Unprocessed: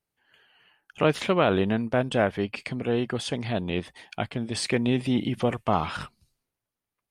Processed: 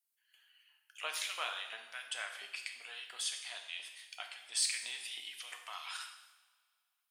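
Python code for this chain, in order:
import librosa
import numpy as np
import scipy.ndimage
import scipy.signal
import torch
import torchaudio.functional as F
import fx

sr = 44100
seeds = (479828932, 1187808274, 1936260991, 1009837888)

y = fx.filter_lfo_highpass(x, sr, shape='saw_up', hz=2.9, low_hz=720.0, high_hz=2400.0, q=1.0)
y = np.diff(y, prepend=0.0)
y = fx.rev_double_slope(y, sr, seeds[0], early_s=0.92, late_s=2.4, knee_db=-19, drr_db=3.0)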